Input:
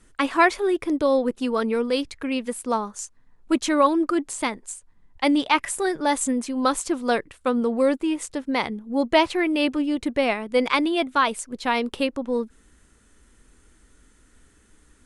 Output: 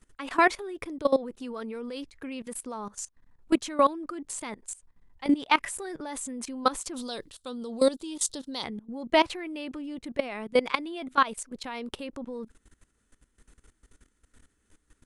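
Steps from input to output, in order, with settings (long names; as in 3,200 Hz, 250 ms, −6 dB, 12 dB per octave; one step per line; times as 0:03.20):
output level in coarse steps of 18 dB
0:06.96–0:08.64: high shelf with overshoot 2,900 Hz +9 dB, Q 3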